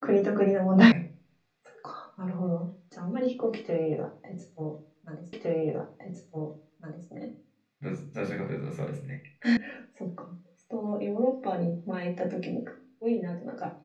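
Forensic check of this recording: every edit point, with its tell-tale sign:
0:00.92: cut off before it has died away
0:05.33: the same again, the last 1.76 s
0:09.57: cut off before it has died away

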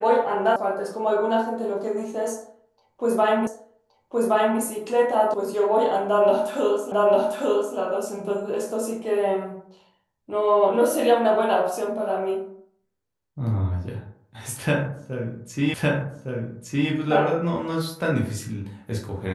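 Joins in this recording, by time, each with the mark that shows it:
0:00.56: cut off before it has died away
0:03.47: the same again, the last 1.12 s
0:05.34: cut off before it has died away
0:06.92: the same again, the last 0.85 s
0:15.74: the same again, the last 1.16 s

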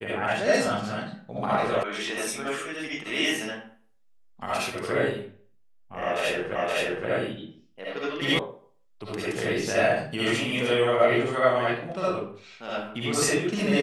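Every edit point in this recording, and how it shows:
0:01.83: cut off before it has died away
0:06.55: the same again, the last 0.52 s
0:08.39: cut off before it has died away

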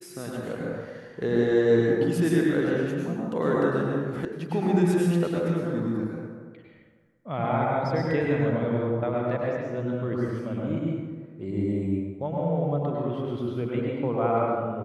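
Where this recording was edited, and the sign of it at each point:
0:04.25: cut off before it has died away

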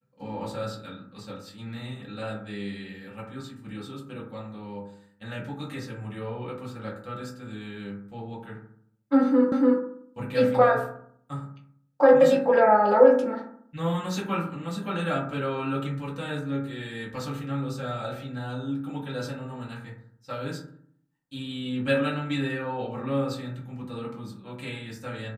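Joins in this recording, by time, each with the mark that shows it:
0:09.52: the same again, the last 0.29 s

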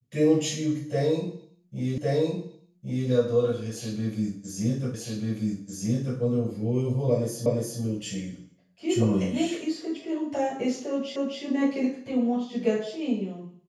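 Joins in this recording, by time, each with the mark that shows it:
0:01.98: the same again, the last 1.11 s
0:04.94: the same again, the last 1.24 s
0:07.46: the same again, the last 0.35 s
0:11.16: the same again, the last 0.26 s

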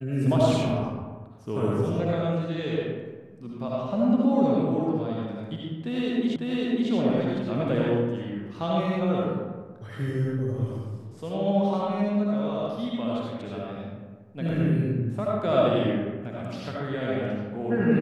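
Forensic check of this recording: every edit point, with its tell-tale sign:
0:06.36: the same again, the last 0.55 s

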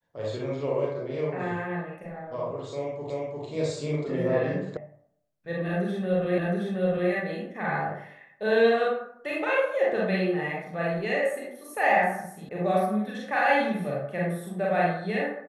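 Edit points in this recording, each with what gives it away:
0:03.10: the same again, the last 0.35 s
0:04.77: cut off before it has died away
0:06.38: the same again, the last 0.72 s
0:12.49: cut off before it has died away

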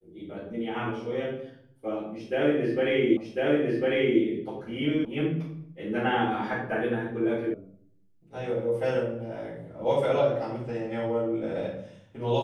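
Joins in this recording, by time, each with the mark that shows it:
0:03.17: the same again, the last 1.05 s
0:05.05: cut off before it has died away
0:07.54: cut off before it has died away

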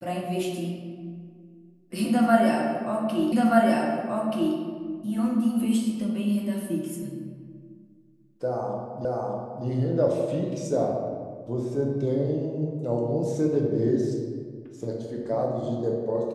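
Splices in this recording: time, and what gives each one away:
0:03.32: the same again, the last 1.23 s
0:09.05: the same again, the last 0.6 s

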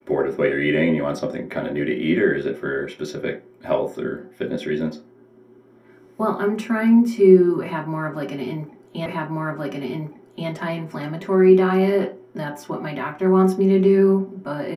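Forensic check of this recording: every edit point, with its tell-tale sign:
0:09.06: the same again, the last 1.43 s

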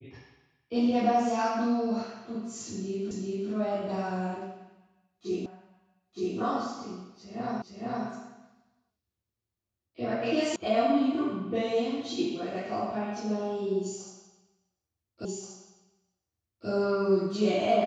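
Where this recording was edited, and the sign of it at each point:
0:03.11: the same again, the last 0.39 s
0:05.46: the same again, the last 0.92 s
0:07.62: the same again, the last 0.46 s
0:10.56: cut off before it has died away
0:15.25: the same again, the last 1.43 s

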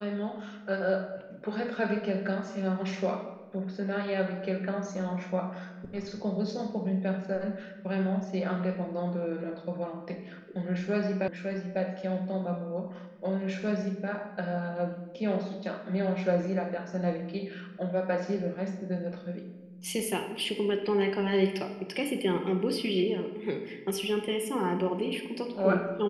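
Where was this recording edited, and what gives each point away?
0:11.28: cut off before it has died away

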